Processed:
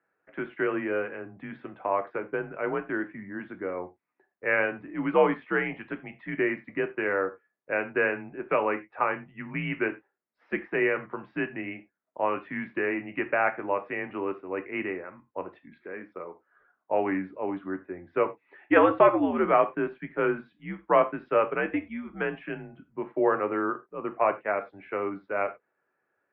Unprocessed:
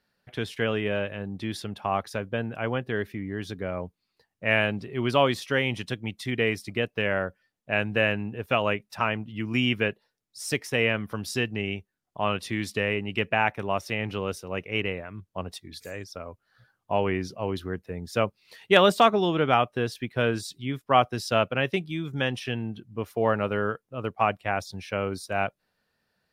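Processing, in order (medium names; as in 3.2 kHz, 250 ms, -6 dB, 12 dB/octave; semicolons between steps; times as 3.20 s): mistuned SSB -86 Hz 320–2200 Hz; gated-style reverb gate 120 ms falling, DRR 7.5 dB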